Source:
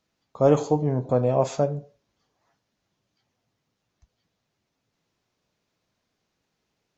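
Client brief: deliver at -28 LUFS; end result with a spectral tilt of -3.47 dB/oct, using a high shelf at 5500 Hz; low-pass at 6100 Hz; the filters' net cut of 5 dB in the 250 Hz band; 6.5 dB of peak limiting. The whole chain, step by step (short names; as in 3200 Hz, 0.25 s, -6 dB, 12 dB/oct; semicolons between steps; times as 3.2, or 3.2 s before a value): LPF 6100 Hz; bell 250 Hz -7 dB; high shelf 5500 Hz +5.5 dB; gain -1 dB; limiter -15.5 dBFS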